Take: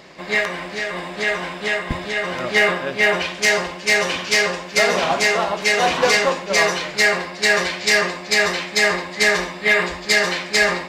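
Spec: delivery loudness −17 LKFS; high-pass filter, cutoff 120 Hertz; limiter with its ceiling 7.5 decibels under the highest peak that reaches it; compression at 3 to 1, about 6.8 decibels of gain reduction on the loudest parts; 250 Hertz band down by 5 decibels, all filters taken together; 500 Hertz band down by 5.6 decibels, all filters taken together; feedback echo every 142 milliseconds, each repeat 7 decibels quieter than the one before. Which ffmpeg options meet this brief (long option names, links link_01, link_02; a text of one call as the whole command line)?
ffmpeg -i in.wav -af "highpass=120,equalizer=frequency=250:width_type=o:gain=-5,equalizer=frequency=500:width_type=o:gain=-6,acompressor=threshold=-22dB:ratio=3,alimiter=limit=-17dB:level=0:latency=1,aecho=1:1:142|284|426|568|710:0.447|0.201|0.0905|0.0407|0.0183,volume=8dB" out.wav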